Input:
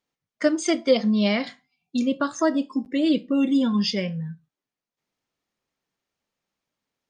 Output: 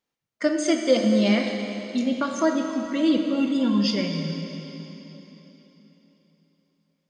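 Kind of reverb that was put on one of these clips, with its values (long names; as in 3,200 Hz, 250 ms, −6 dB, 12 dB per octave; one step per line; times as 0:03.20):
dense smooth reverb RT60 3.7 s, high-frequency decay 0.95×, DRR 3 dB
level −1.5 dB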